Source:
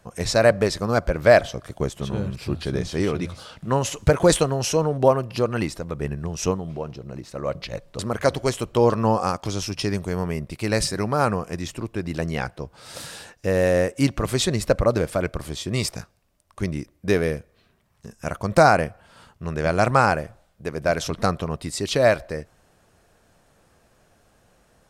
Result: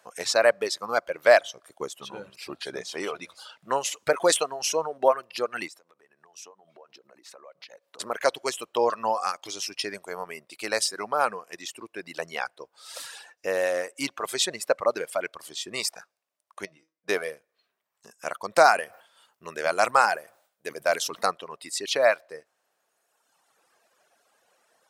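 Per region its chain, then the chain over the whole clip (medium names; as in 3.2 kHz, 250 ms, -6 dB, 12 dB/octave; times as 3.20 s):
5.68–8.00 s: high-pass 200 Hz + compression, threshold -41 dBFS
16.65–17.09 s: distance through air 64 m + feedback comb 160 Hz, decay 0.24 s, mix 80%
18.64–21.31 s: treble shelf 9.7 kHz +9.5 dB + decay stretcher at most 110 dB/s
whole clip: high-pass 570 Hz 12 dB/octave; reverb removal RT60 1.7 s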